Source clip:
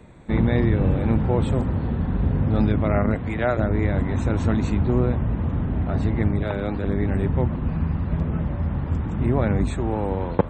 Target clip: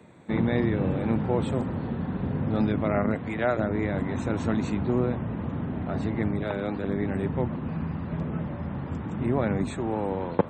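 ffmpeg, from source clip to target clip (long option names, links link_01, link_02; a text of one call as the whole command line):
ffmpeg -i in.wav -af "highpass=140,volume=-2.5dB" out.wav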